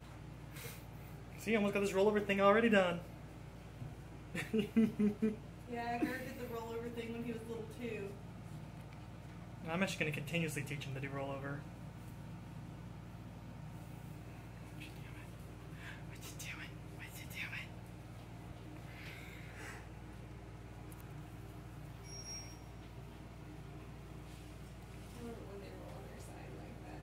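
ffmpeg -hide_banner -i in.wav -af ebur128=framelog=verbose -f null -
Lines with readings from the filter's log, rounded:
Integrated loudness:
  I:         -40.6 LUFS
  Threshold: -51.6 LUFS
Loudness range:
  LRA:        16.1 LU
  Threshold: -61.7 LUFS
  LRA low:   -50.8 LUFS
  LRA high:  -34.7 LUFS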